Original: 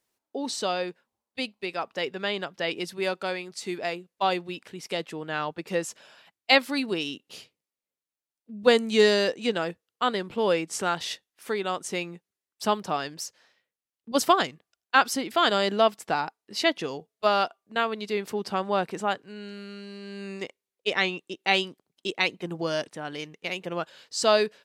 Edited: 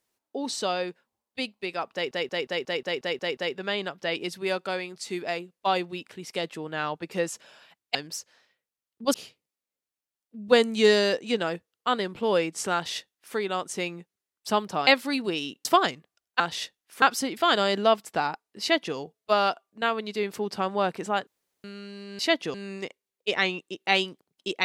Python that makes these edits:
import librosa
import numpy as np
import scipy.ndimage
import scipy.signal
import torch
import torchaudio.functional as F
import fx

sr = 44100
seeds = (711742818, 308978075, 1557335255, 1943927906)

y = fx.edit(x, sr, fx.stutter(start_s=1.93, slice_s=0.18, count=9),
    fx.swap(start_s=6.51, length_s=0.78, other_s=13.02, other_length_s=1.19),
    fx.duplicate(start_s=10.89, length_s=0.62, to_s=14.96),
    fx.duplicate(start_s=16.55, length_s=0.35, to_s=20.13),
    fx.room_tone_fill(start_s=19.21, length_s=0.37), tone=tone)